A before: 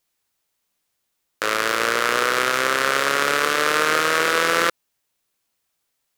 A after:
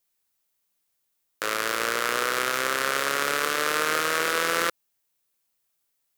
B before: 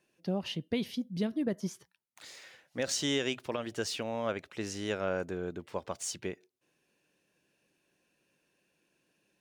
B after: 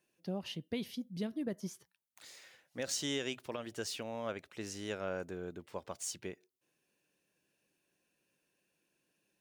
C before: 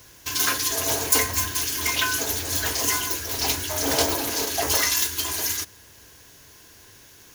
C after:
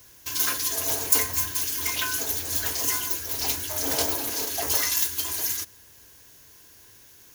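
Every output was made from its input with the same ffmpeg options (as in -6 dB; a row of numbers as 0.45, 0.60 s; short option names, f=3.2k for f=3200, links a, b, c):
-af "highshelf=f=9.1k:g=8.5,volume=-6dB"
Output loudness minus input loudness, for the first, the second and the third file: -5.5, -5.5, -1.5 LU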